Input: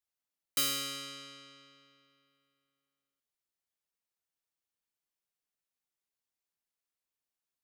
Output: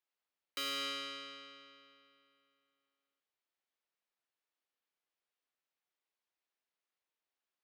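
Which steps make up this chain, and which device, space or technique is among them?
DJ mixer with the lows and highs turned down (three-way crossover with the lows and the highs turned down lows −20 dB, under 260 Hz, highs −16 dB, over 4,400 Hz; brickwall limiter −32 dBFS, peak gain reduction 7 dB)
level +3 dB

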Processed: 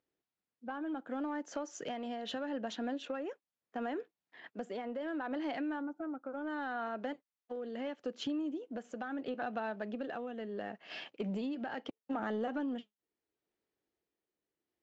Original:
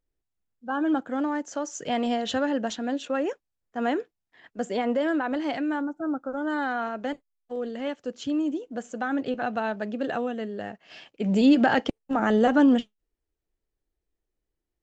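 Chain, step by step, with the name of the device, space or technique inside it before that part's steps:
AM radio (band-pass filter 190–4,500 Hz; downward compressor 5 to 1, threshold −36 dBFS, peak gain reduction 18.5 dB; soft clipping −26.5 dBFS, distortion −25 dB; amplitude tremolo 0.73 Hz, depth 37%)
level +2 dB

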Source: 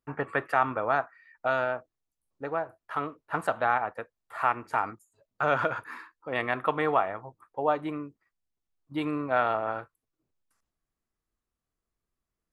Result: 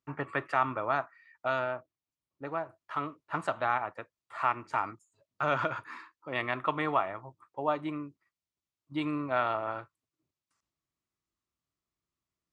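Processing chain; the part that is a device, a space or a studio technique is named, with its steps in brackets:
car door speaker (loudspeaker in its box 89–8,000 Hz, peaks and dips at 220 Hz −6 dB, 470 Hz −9 dB, 760 Hz −6 dB, 1,600 Hz −6 dB)
0:01.59–0:02.47: high-shelf EQ 5,300 Hz −10 dB

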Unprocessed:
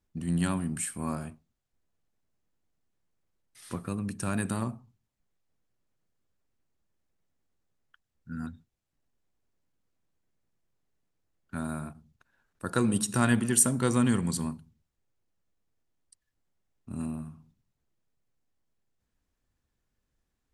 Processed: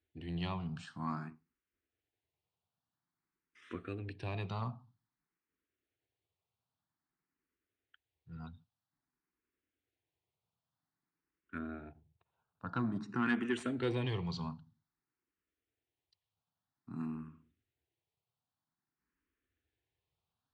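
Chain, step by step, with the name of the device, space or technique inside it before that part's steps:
0:11.58–0:13.26: low-pass filter 1,200 Hz 6 dB per octave
barber-pole phaser into a guitar amplifier (frequency shifter mixed with the dry sound +0.51 Hz; soft clipping −21 dBFS, distortion −14 dB; loudspeaker in its box 97–4,200 Hz, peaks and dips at 140 Hz −4 dB, 210 Hz −9 dB, 560 Hz −9 dB)

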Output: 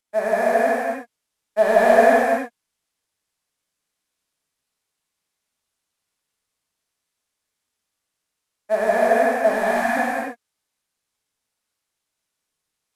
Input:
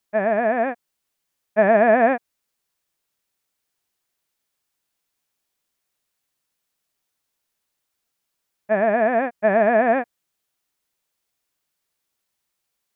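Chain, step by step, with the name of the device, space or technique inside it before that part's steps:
early wireless headset (high-pass filter 250 Hz 24 dB per octave; variable-slope delta modulation 64 kbit/s)
0:09.52–0:09.97: Chebyshev band-stop filter 350–740 Hz, order 3
reverb whose tail is shaped and stops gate 330 ms flat, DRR −6.5 dB
level −5.5 dB

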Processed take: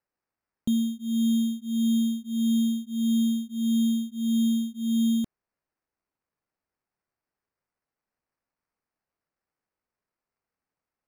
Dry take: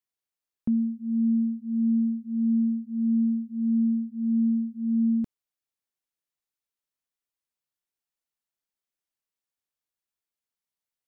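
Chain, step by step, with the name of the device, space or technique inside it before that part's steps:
crushed at another speed (tape speed factor 0.8×; decimation without filtering 16×; tape speed factor 1.25×)

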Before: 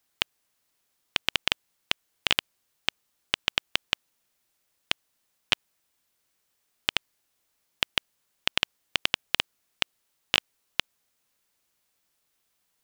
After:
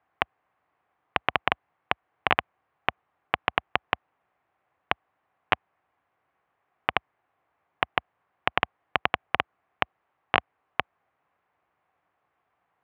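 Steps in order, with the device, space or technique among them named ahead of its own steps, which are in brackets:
bass cabinet (loudspeaker in its box 64–2,100 Hz, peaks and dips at 220 Hz −7 dB, 750 Hz +9 dB, 1,100 Hz +6 dB)
level +6 dB

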